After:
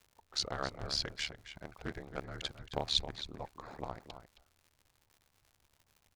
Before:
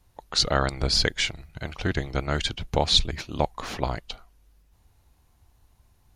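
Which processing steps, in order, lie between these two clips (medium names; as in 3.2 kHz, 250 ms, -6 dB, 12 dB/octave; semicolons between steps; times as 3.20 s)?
local Wiener filter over 15 samples; bass shelf 220 Hz -8 dB; crackle 190 per s -42 dBFS; ring modulator 37 Hz; echo from a far wall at 46 m, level -10 dB; loudspeaker Doppler distortion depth 0.18 ms; trim -8 dB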